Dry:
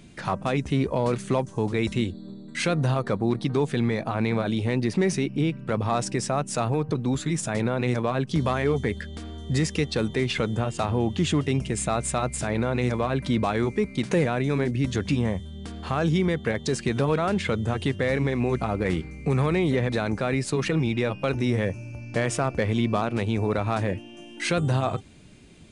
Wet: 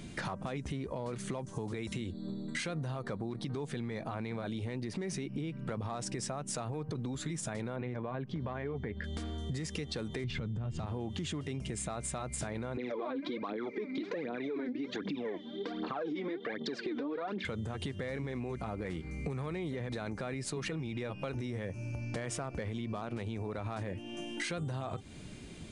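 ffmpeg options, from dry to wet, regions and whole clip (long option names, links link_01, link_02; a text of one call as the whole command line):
ffmpeg -i in.wav -filter_complex "[0:a]asettb=1/sr,asplit=3[link_01][link_02][link_03];[link_01]atrim=end=1.534[link_04];[link_02]atrim=start=1.53:end=2.01,asetpts=PTS-STARTPTS,afade=type=in:duration=0.004:curve=qsin,afade=type=out:start_time=0.476:duration=0.004:curve=qsin,highpass=59,highshelf=frequency=8200:gain=6.5[link_05];[link_03]atrim=start=2.006[link_06];[link_04][link_05]acrossfade=duration=0.004:curve1=hsin:curve2=qsin[link_07];[link_07][link_06]acrossfade=duration=0.004:curve1=qsin:curve2=hsin,asettb=1/sr,asplit=3[link_08][link_09][link_10];[link_08]atrim=end=7.764[link_11];[link_09]atrim=start=7.76:end=9.04,asetpts=PTS-STARTPTS,afade=type=in:duration=0.004:curve=qsin,afade=type=out:start_time=1.276:duration=0.004:curve=qsin,lowpass=2300,bandreject=frequency=1300:width=15[link_12];[link_10]atrim=start=9.036[link_13];[link_11][link_12]acrossfade=duration=0.004:curve1=hsin:curve2=qsin[link_14];[link_14][link_13]acrossfade=duration=0.004:curve1=qsin:curve2=hsin,asettb=1/sr,asplit=3[link_15][link_16][link_17];[link_15]atrim=end=10.244[link_18];[link_16]atrim=start=10.24:end=10.86,asetpts=PTS-STARTPTS,afade=type=in:duration=0.004:curve=qsin,afade=type=out:start_time=0.616:duration=0.004:curve=qsin,lowpass=5300,bass=frequency=250:gain=15,treble=frequency=4000:gain=1[link_19];[link_17]atrim=start=10.856[link_20];[link_18][link_19]acrossfade=duration=0.004:curve1=hsin:curve2=qsin[link_21];[link_21][link_20]acrossfade=duration=0.004:curve1=qsin:curve2=hsin,asettb=1/sr,asplit=3[link_22][link_23][link_24];[link_22]atrim=end=12.774[link_25];[link_23]atrim=start=12.77:end=17.45,asetpts=PTS-STARTPTS,afade=type=in:duration=0.004:curve=qsin,afade=type=out:start_time=4.676:duration=0.004:curve=qsin,aphaser=in_gain=1:out_gain=1:delay=4.1:decay=0.74:speed=1.3:type=triangular,highpass=frequency=220:width=0.5412,highpass=frequency=220:width=1.3066,equalizer=frequency=300:width_type=q:width=4:gain=9,equalizer=frequency=460:width_type=q:width=4:gain=6,equalizer=frequency=2900:width_type=q:width=4:gain=-5,lowpass=frequency=4100:width=0.5412,lowpass=frequency=4100:width=1.3066[link_26];[link_24]atrim=start=17.446[link_27];[link_25][link_26]acrossfade=duration=0.004:curve1=hsin:curve2=qsin[link_28];[link_28][link_27]acrossfade=duration=0.004:curve1=qsin:curve2=hsin,bandreject=frequency=2600:width=22,alimiter=limit=-22dB:level=0:latency=1:release=72,acompressor=threshold=-38dB:ratio=6,volume=3dB" out.wav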